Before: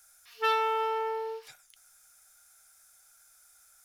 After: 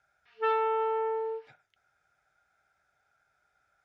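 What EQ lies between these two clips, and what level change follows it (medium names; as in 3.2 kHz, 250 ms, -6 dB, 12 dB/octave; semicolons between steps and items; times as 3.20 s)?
band-pass 120–2300 Hz; tilt EQ -2.5 dB/octave; band-stop 1.1 kHz, Q 5.1; 0.0 dB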